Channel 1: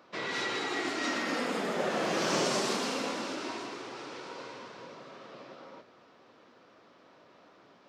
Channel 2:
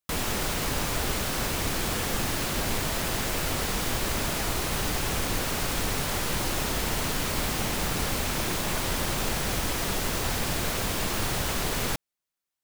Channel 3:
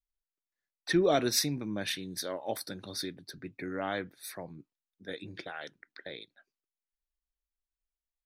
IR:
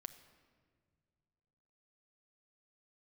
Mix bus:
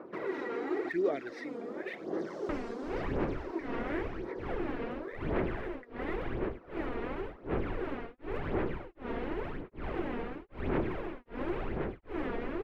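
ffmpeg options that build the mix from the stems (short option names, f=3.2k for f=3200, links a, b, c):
-filter_complex "[0:a]highshelf=f=9.5k:g=-11,acompressor=threshold=-42dB:ratio=2.5,volume=-1dB,asplit=2[a][b];[b]volume=-12dB[c];[1:a]tremolo=f=1.3:d=1,adelay=2400,volume=-1dB[d];[2:a]lowpass=f=2k:t=q:w=6.1,lowshelf=f=320:g=-9.5,volume=-17dB,asplit=2[e][f];[f]apad=whole_len=347740[g];[a][g]sidechaincompress=threshold=-56dB:ratio=8:attack=12:release=702[h];[h][d]amix=inputs=2:normalize=0,lowpass=f=2.3k:w=0.5412,lowpass=f=2.3k:w=1.3066,acompressor=threshold=-38dB:ratio=10,volume=0dB[i];[3:a]atrim=start_sample=2205[j];[c][j]afir=irnorm=-1:irlink=0[k];[e][i][k]amix=inputs=3:normalize=0,equalizer=f=370:t=o:w=1:g=12.5,aphaser=in_gain=1:out_gain=1:delay=4.3:decay=0.59:speed=0.93:type=sinusoidal"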